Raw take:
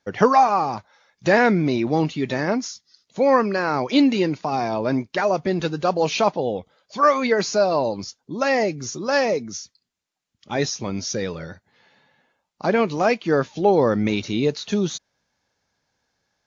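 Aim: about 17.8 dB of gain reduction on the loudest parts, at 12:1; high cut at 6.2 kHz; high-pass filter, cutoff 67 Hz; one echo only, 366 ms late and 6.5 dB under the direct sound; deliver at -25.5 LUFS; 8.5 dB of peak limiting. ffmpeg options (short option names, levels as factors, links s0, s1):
-af "highpass=67,lowpass=6200,acompressor=threshold=0.0355:ratio=12,alimiter=level_in=1.06:limit=0.0631:level=0:latency=1,volume=0.944,aecho=1:1:366:0.473,volume=2.82"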